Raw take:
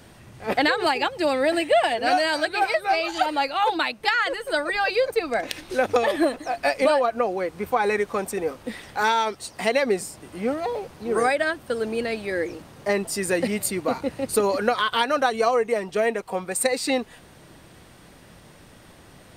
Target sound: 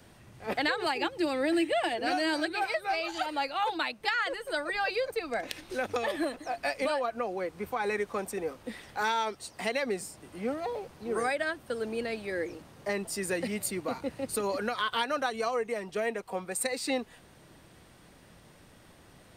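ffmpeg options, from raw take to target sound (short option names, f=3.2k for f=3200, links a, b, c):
-filter_complex "[0:a]asettb=1/sr,asplit=3[a][b][c];[a]atrim=end=0.974[d];[b]atrim=start=0.97:end=2.53,asetpts=PTS-STARTPTS,afade=t=in:d=0.004:c=qsin,afade=t=out:st=1.556:d=0.004:c=qsin,equalizer=f=330:t=o:w=0.29:g=14[e];[c]atrim=start=2.526[f];[d][e]acrossfade=d=0.004:c1=hsin:c2=qsin[g];[g][f]acrossfade=d=0.004:c1=qsin:c2=hsin,acrossover=split=220|1100|5700[h][i][j][k];[i]alimiter=limit=-18dB:level=0:latency=1:release=166[l];[h][l][j][k]amix=inputs=4:normalize=0,volume=-7dB"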